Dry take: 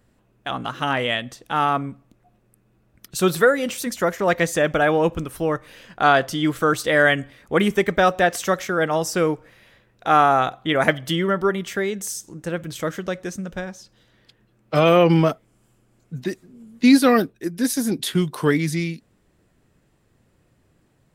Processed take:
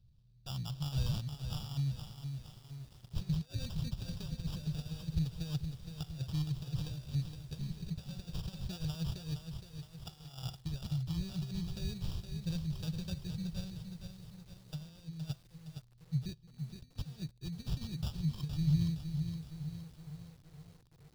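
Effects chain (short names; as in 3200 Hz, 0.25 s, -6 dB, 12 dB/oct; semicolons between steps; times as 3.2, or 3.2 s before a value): sample-rate reducer 2100 Hz, jitter 0%; negative-ratio compressor -23 dBFS, ratio -0.5; EQ curve 150 Hz 0 dB, 260 Hz -26 dB, 1900 Hz -28 dB, 4300 Hz -6 dB, 7200 Hz -19 dB; lo-fi delay 0.466 s, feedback 55%, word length 9-bit, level -7 dB; gain -4.5 dB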